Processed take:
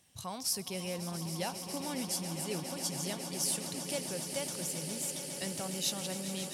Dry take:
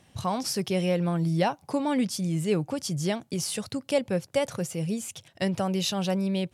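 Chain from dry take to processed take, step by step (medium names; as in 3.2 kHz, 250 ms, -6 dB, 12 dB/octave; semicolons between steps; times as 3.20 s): pre-emphasis filter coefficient 0.8; echo with a slow build-up 137 ms, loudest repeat 8, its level -12.5 dB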